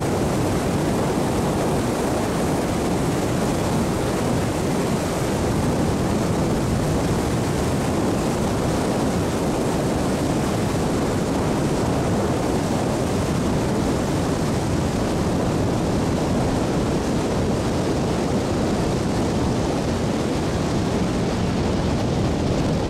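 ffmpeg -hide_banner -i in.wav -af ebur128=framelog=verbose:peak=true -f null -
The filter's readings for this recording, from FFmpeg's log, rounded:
Integrated loudness:
  I:         -21.9 LUFS
  Threshold: -31.9 LUFS
Loudness range:
  LRA:         0.4 LU
  Threshold: -41.9 LUFS
  LRA low:   -22.1 LUFS
  LRA high:  -21.7 LUFS
True peak:
  Peak:      -10.7 dBFS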